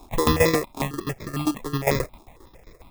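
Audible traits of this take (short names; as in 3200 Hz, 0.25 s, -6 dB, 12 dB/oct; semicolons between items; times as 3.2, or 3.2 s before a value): tremolo saw down 7.5 Hz, depth 80%; aliases and images of a low sample rate 1500 Hz, jitter 0%; notches that jump at a steady rate 11 Hz 520–2900 Hz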